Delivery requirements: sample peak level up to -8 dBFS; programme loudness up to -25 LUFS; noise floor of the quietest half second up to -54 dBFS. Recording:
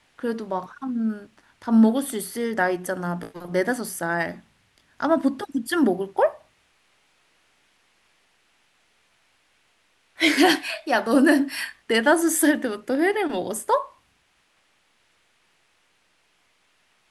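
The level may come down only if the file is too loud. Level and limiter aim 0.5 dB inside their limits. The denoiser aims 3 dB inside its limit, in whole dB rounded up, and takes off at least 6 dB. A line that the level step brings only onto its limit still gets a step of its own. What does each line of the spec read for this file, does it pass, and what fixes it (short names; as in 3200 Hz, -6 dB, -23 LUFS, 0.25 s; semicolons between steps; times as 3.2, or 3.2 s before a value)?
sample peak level -5.5 dBFS: fail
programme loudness -23.0 LUFS: fail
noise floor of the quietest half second -65 dBFS: OK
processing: gain -2.5 dB; limiter -8.5 dBFS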